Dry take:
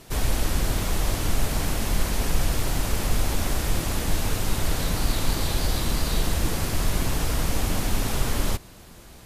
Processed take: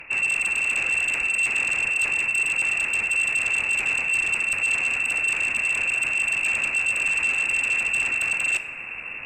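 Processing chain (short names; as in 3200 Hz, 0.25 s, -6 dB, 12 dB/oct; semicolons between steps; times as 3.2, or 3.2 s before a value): reverse; compressor 12:1, threshold -30 dBFS, peak gain reduction 17 dB; reverse; inverted band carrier 2700 Hz; sine folder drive 7 dB, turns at -19 dBFS; two-slope reverb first 0.53 s, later 2.1 s, from -18 dB, DRR 13.5 dB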